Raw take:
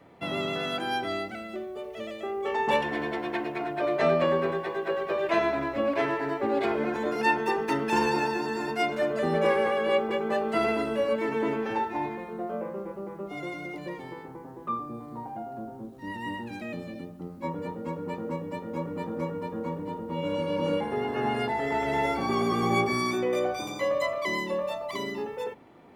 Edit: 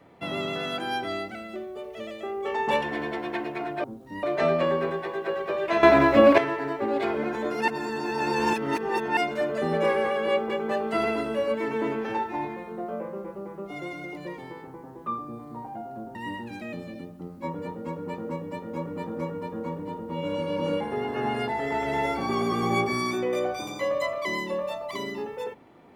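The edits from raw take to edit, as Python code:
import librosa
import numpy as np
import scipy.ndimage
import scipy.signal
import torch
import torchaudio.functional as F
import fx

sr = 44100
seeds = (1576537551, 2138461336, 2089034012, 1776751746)

y = fx.edit(x, sr, fx.clip_gain(start_s=5.44, length_s=0.55, db=11.5),
    fx.reverse_span(start_s=7.29, length_s=1.49),
    fx.move(start_s=15.76, length_s=0.39, to_s=3.84), tone=tone)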